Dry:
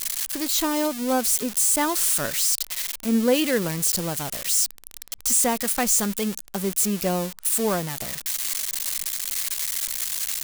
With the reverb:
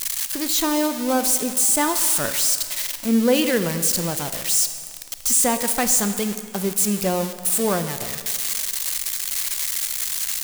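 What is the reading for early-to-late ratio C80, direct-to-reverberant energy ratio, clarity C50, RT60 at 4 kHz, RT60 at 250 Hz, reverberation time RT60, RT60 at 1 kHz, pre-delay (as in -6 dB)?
11.0 dB, 9.0 dB, 10.0 dB, 1.7 s, 1.9 s, 2.0 s, 2.1 s, 29 ms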